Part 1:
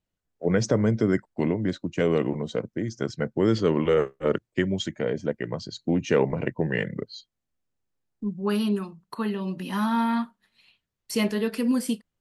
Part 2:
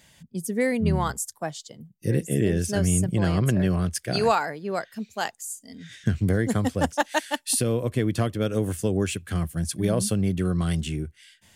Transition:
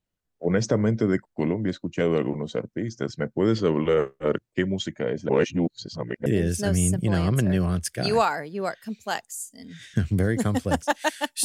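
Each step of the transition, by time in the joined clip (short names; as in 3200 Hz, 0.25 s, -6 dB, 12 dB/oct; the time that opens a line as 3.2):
part 1
5.29–6.26 reverse
6.26 switch to part 2 from 2.36 s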